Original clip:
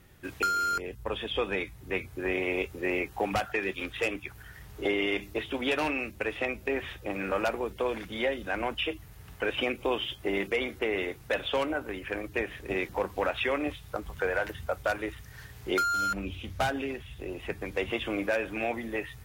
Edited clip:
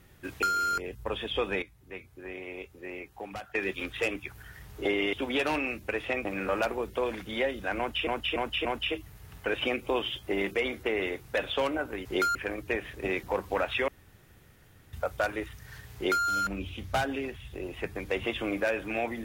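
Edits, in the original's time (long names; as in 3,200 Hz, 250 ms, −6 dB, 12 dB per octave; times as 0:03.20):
0:01.62–0:03.55: clip gain −11 dB
0:05.13–0:05.45: remove
0:06.57–0:07.08: remove
0:08.61–0:08.90: repeat, 4 plays
0:13.54–0:14.59: fill with room tone
0:15.61–0:15.91: duplicate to 0:12.01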